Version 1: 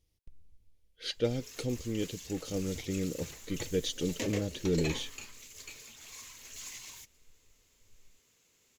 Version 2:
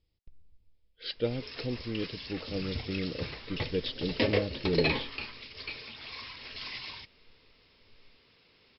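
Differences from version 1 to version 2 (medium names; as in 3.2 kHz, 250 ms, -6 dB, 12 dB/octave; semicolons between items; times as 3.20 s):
background +10.0 dB; master: add Chebyshev low-pass 5.3 kHz, order 10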